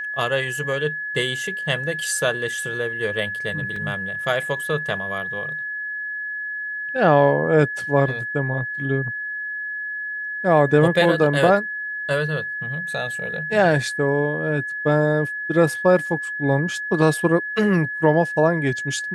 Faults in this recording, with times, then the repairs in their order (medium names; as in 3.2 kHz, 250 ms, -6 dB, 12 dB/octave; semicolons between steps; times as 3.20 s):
whine 1.7 kHz -26 dBFS
3.76 s: dropout 3.4 ms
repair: band-stop 1.7 kHz, Q 30; interpolate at 3.76 s, 3.4 ms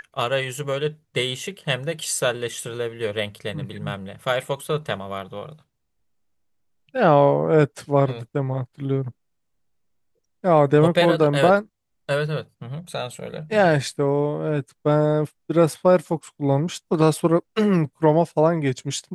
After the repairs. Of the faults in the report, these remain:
nothing left